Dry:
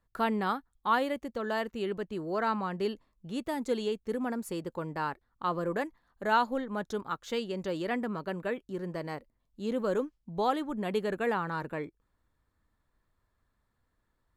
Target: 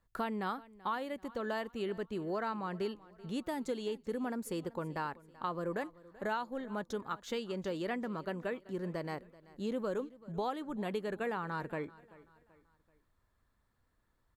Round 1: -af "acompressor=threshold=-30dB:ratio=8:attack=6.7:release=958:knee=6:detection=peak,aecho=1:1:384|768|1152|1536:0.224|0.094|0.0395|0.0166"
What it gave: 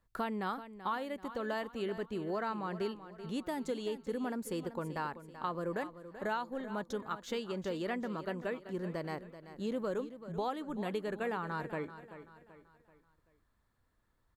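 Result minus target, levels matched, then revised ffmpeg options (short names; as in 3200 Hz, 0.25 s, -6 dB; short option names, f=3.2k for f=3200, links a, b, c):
echo-to-direct +7.5 dB
-af "acompressor=threshold=-30dB:ratio=8:attack=6.7:release=958:knee=6:detection=peak,aecho=1:1:384|768|1152:0.0944|0.0397|0.0167"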